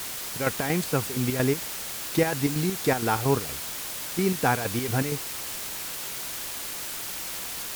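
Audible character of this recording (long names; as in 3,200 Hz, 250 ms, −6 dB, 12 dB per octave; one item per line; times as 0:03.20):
chopped level 4.3 Hz, depth 60%, duty 60%
a quantiser's noise floor 6 bits, dither triangular
Ogg Vorbis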